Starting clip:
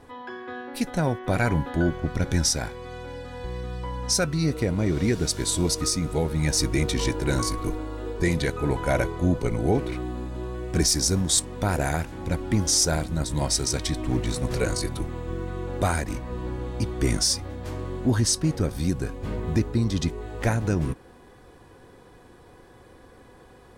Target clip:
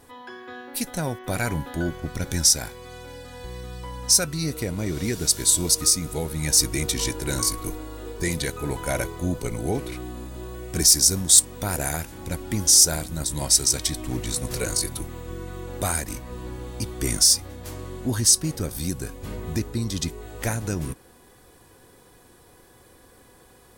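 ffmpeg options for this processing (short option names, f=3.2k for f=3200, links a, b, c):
-af "aemphasis=mode=production:type=75fm,volume=-3dB"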